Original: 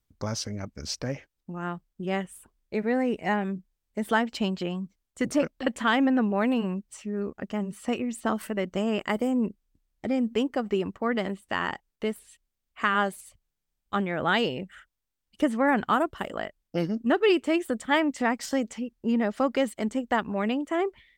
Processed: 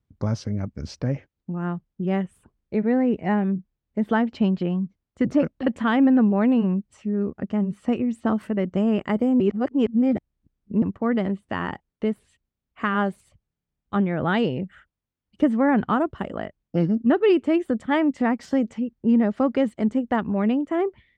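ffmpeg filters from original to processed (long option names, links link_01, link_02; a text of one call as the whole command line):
ffmpeg -i in.wav -filter_complex "[0:a]asettb=1/sr,asplit=3[link_01][link_02][link_03];[link_01]atrim=end=2.804[link_04];[link_02]atrim=start=2.8:end=5.39,asetpts=PTS-STARTPTS,afade=type=in:duration=0.004:curve=qsin,afade=type=out:start_time=2.586:duration=0.004:curve=qsin,equalizer=frequency=9700:width_type=o:width=0.77:gain=-9.5[link_05];[link_03]atrim=start=5.386[link_06];[link_04][link_05]acrossfade=duration=0.004:curve1=hsin:curve2=qsin[link_07];[link_07][link_06]acrossfade=duration=0.004:curve1=qsin:curve2=hsin,asplit=3[link_08][link_09][link_10];[link_08]atrim=end=9.402[link_11];[link_09]atrim=start=9.398:end=10.822,asetpts=PTS-STARTPTS,areverse[link_12];[link_10]atrim=start=10.818[link_13];[link_11][link_12]acrossfade=duration=0.004:curve1=hsin:curve2=hsin[link_14];[link_14][link_13]acrossfade=duration=0.004:curve1=hsin:curve2=hsin,highpass=110,aemphasis=mode=reproduction:type=riaa" out.wav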